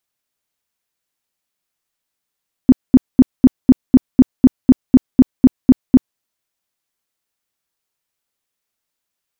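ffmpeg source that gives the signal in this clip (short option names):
-f lavfi -i "aevalsrc='0.841*sin(2*PI*257*mod(t,0.25))*lt(mod(t,0.25),8/257)':d=3.5:s=44100"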